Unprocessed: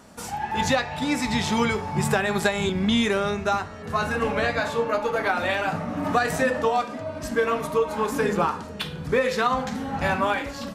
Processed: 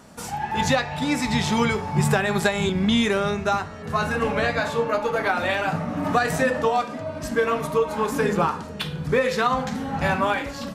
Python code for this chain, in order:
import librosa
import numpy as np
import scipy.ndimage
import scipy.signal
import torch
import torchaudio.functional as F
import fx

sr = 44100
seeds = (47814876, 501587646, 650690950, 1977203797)

y = fx.peak_eq(x, sr, hz=150.0, db=5.0, octaves=0.36)
y = y * 10.0 ** (1.0 / 20.0)